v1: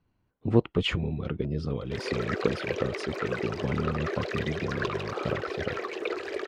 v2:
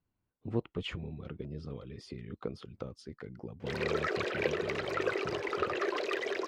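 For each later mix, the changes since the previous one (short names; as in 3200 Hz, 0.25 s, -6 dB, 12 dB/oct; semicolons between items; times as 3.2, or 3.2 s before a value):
speech -11.0 dB; background: entry +1.75 s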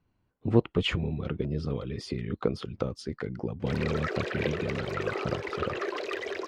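speech +10.5 dB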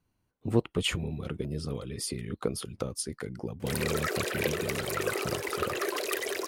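speech -3.5 dB; master: remove air absorption 190 m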